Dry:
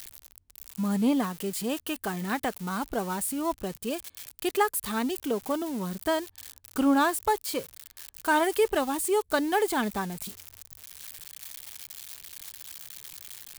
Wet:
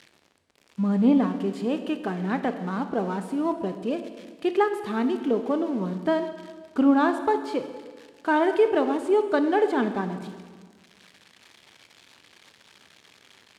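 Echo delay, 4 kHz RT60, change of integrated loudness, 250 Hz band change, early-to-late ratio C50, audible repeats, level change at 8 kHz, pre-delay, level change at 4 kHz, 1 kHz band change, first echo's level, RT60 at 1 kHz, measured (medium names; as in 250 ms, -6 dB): no echo, 1.5 s, +3.5 dB, +5.0 dB, 9.5 dB, no echo, under -15 dB, 17 ms, -4.5 dB, +1.5 dB, no echo, 1.5 s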